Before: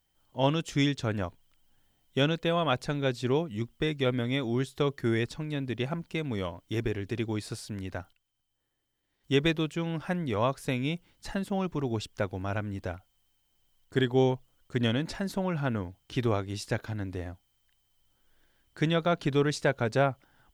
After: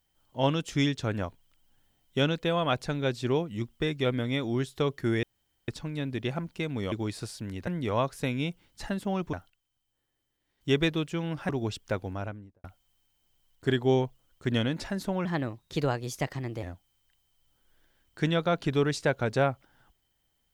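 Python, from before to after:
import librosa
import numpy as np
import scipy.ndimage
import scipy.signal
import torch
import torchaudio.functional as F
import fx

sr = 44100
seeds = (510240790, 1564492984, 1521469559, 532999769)

y = fx.studio_fade_out(x, sr, start_s=12.3, length_s=0.63)
y = fx.edit(y, sr, fx.insert_room_tone(at_s=5.23, length_s=0.45),
    fx.cut(start_s=6.47, length_s=0.74),
    fx.move(start_s=10.12, length_s=1.66, to_s=7.96),
    fx.speed_span(start_s=15.54, length_s=1.68, speed=1.22), tone=tone)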